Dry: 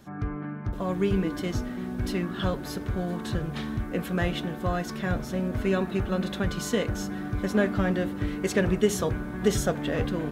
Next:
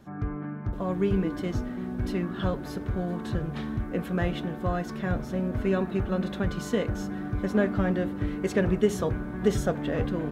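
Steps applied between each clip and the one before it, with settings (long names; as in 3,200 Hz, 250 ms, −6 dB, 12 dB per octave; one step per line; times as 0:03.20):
high-shelf EQ 2,400 Hz −8.5 dB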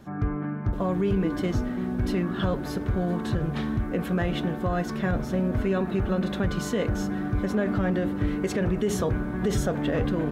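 brickwall limiter −21 dBFS, peak gain reduction 10 dB
level +4.5 dB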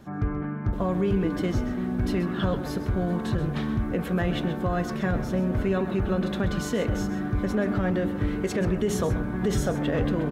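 single-tap delay 131 ms −12.5 dB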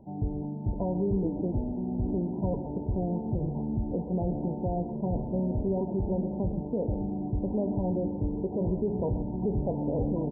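linear-phase brick-wall low-pass 1,000 Hz
level −3.5 dB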